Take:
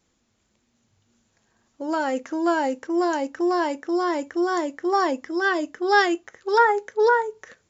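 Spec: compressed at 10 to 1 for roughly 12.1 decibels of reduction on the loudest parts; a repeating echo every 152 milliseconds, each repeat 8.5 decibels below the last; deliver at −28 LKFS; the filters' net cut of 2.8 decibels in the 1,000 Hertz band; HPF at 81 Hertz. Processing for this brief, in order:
high-pass filter 81 Hz
parametric band 1,000 Hz −3.5 dB
downward compressor 10 to 1, threshold −27 dBFS
repeating echo 152 ms, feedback 38%, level −8.5 dB
level +3 dB

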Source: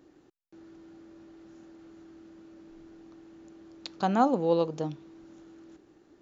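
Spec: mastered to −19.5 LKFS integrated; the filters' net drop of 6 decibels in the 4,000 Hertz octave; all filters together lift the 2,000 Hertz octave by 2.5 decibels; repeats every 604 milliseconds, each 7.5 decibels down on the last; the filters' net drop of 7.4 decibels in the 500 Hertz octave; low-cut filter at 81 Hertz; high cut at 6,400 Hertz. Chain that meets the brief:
high-pass filter 81 Hz
low-pass filter 6,400 Hz
parametric band 500 Hz −8.5 dB
parametric band 2,000 Hz +6.5 dB
parametric band 4,000 Hz −9 dB
repeating echo 604 ms, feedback 42%, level −7.5 dB
level +13 dB

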